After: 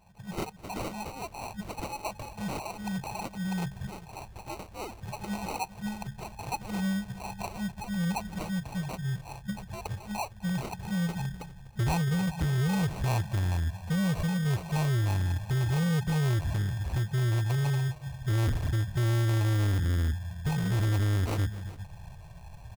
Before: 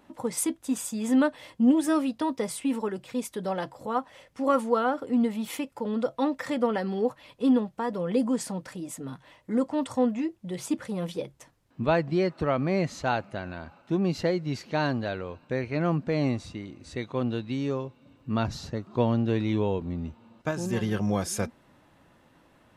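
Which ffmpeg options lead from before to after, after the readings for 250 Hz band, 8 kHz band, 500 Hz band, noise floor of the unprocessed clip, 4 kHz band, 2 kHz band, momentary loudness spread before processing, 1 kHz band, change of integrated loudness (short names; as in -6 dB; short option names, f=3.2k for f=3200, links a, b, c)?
-6.5 dB, -5.0 dB, -12.0 dB, -61 dBFS, +0.5 dB, -1.5 dB, 12 LU, -5.0 dB, -2.5 dB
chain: -filter_complex "[0:a]asubboost=boost=3:cutoff=120,aresample=22050,aresample=44100,afftfilt=real='re*(1-between(b*sr/4096,210,2500))':imag='im*(1-between(b*sr/4096,210,2500))':win_size=4096:overlap=0.75,aexciter=amount=8.6:drive=2.9:freq=4.5k,asplit=2[a][b];[b]acompressor=threshold=-37dB:ratio=8,volume=2dB[c];[a][c]amix=inputs=2:normalize=0,firequalizer=gain_entry='entry(110,0);entry(360,-18);entry(620,-2);entry(2400,11);entry(4000,-27);entry(6300,-25)':delay=0.05:min_phase=1,asplit=2[d][e];[e]aecho=0:1:253|401:0.1|0.1[f];[d][f]amix=inputs=2:normalize=0,acrusher=samples=26:mix=1:aa=0.000001,dynaudnorm=f=180:g=5:m=8.5dB,asoftclip=type=tanh:threshold=-24dB"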